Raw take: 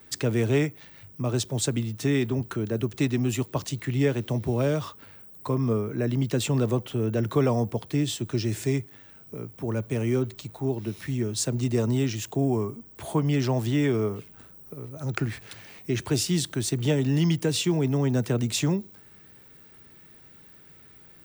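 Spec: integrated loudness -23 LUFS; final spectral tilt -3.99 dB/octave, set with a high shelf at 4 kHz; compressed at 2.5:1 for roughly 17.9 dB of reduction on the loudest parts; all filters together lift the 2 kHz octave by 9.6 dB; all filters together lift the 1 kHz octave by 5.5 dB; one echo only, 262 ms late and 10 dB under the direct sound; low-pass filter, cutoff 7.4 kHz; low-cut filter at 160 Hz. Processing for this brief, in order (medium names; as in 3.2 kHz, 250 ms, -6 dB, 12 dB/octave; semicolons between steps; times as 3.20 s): high-pass 160 Hz; low-pass 7.4 kHz; peaking EQ 1 kHz +4 dB; peaking EQ 2 kHz +8.5 dB; treble shelf 4 kHz +9 dB; compression 2.5:1, threshold -46 dBFS; delay 262 ms -10 dB; trim +18.5 dB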